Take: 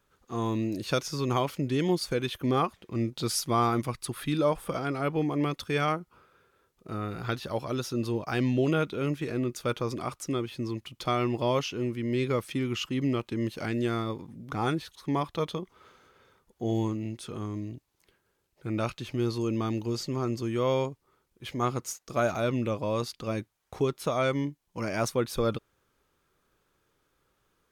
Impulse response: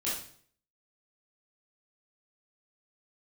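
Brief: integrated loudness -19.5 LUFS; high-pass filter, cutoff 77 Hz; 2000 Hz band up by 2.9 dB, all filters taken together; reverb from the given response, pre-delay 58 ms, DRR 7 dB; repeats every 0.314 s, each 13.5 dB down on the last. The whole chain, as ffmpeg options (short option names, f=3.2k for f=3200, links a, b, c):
-filter_complex "[0:a]highpass=77,equalizer=f=2k:t=o:g=4,aecho=1:1:314|628:0.211|0.0444,asplit=2[a][b];[1:a]atrim=start_sample=2205,adelay=58[c];[b][c]afir=irnorm=-1:irlink=0,volume=-12.5dB[d];[a][d]amix=inputs=2:normalize=0,volume=9.5dB"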